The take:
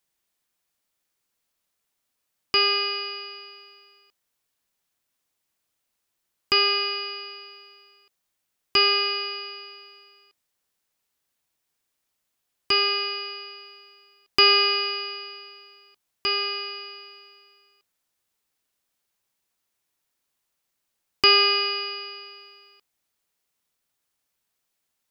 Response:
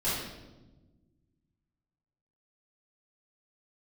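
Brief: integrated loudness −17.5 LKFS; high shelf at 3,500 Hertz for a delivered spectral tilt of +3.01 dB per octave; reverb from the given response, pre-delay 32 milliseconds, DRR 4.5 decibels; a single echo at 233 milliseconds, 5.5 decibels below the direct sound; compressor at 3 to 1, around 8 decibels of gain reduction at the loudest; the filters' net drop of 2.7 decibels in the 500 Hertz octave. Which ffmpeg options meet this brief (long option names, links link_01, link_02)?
-filter_complex "[0:a]equalizer=frequency=500:width_type=o:gain=-4,highshelf=frequency=3500:gain=7,acompressor=threshold=-20dB:ratio=3,aecho=1:1:233:0.531,asplit=2[link_01][link_02];[1:a]atrim=start_sample=2205,adelay=32[link_03];[link_02][link_03]afir=irnorm=-1:irlink=0,volume=-13.5dB[link_04];[link_01][link_04]amix=inputs=2:normalize=0,volume=2dB"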